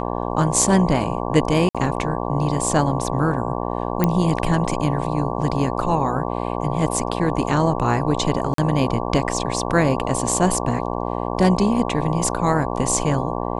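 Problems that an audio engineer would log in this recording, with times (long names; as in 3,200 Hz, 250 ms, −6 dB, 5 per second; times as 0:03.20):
mains buzz 60 Hz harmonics 19 −25 dBFS
0:01.69–0:01.75: drop-out 56 ms
0:04.04: click −5 dBFS
0:08.54–0:08.58: drop-out 43 ms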